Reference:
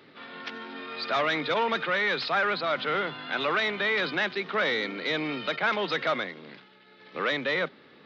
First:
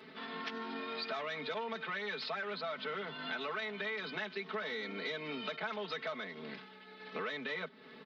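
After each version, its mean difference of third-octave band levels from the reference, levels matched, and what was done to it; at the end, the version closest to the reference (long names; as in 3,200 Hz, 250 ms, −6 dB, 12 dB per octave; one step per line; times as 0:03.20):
4.0 dB: comb filter 4.6 ms, depth 98%
downward compressor 6 to 1, threshold −35 dBFS, peak gain reduction 16 dB
level −2.5 dB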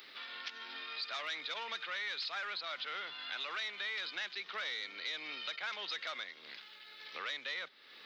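9.0 dB: first difference
downward compressor 2.5 to 1, threshold −59 dBFS, peak gain reduction 16 dB
level +13.5 dB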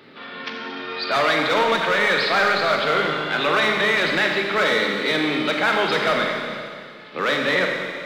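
6.5 dB: hard clipping −21.5 dBFS, distortion −19 dB
four-comb reverb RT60 2.2 s, combs from 29 ms, DRR 1 dB
level +6 dB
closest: first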